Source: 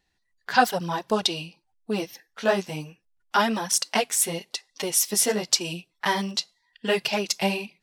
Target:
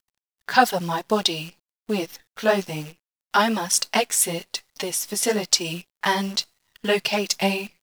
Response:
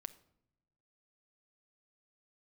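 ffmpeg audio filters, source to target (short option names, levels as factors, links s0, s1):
-filter_complex "[0:a]asettb=1/sr,asplit=3[s0][s1][s2];[s0]atrim=end=4.664[s3];[s1]atrim=start=4.66:end=5.23,asetpts=PTS-STARTPTS,afade=t=in:d=0.004:c=qsin,afade=t=out:st=0.566:d=0.004:c=qsin,acompressor=threshold=0.0501:ratio=6[s4];[s2]atrim=start=5.226[s5];[s3][s4]acrossfade=d=0.004:c1=hsin:c2=qsin[s6];[s6][s5]acrossfade=d=0.004:c1=qsin:c2=hsin,acrusher=bits=8:dc=4:mix=0:aa=0.000001,volume=1.33"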